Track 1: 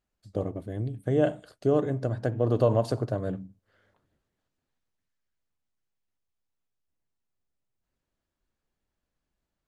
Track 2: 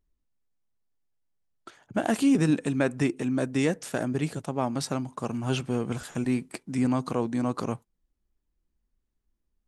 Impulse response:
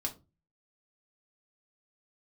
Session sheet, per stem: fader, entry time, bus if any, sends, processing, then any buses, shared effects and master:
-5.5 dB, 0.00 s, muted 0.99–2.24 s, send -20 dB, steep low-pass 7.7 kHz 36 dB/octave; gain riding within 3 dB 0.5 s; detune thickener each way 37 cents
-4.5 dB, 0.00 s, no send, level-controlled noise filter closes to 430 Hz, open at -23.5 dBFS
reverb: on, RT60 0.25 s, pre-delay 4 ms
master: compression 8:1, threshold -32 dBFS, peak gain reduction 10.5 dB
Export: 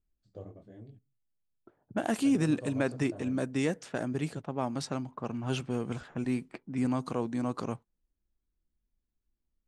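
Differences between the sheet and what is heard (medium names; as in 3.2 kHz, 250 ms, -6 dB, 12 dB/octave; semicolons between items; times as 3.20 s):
stem 1 -5.5 dB -> -15.0 dB; master: missing compression 8:1, threshold -32 dBFS, peak gain reduction 10.5 dB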